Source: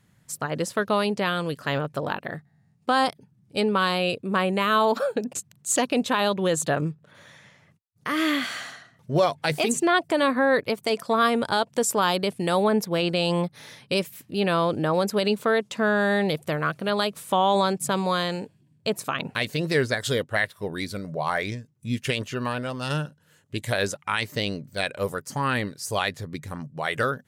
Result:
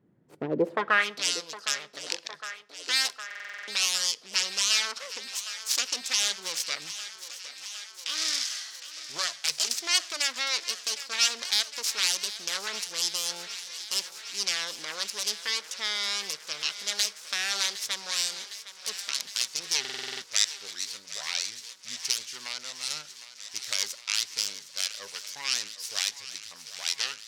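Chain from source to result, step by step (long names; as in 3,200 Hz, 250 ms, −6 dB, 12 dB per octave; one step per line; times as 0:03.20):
phase distortion by the signal itself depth 0.48 ms
band-pass filter sweep 350 Hz → 5,400 Hz, 0:00.58–0:01.25
feedback echo with a high-pass in the loop 760 ms, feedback 80%, high-pass 350 Hz, level −14 dB
on a send at −21 dB: convolution reverb RT60 0.85 s, pre-delay 19 ms
on the sum: buffer that repeats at 0:03.26/0:19.80, samples 2,048, times 8
level +7.5 dB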